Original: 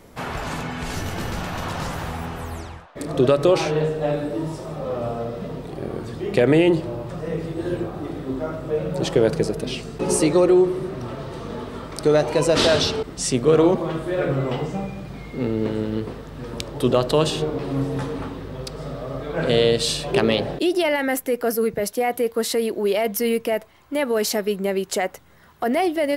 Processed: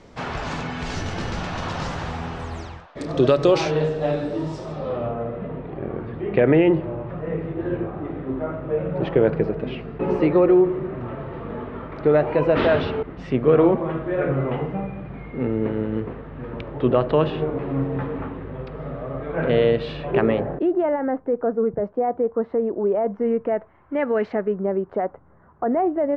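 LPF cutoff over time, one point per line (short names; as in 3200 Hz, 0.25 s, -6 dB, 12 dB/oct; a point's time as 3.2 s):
LPF 24 dB/oct
4.71 s 6400 Hz
5.15 s 2400 Hz
20.04 s 2400 Hz
20.99 s 1200 Hz
23.03 s 1200 Hz
24.18 s 2200 Hz
24.63 s 1300 Hz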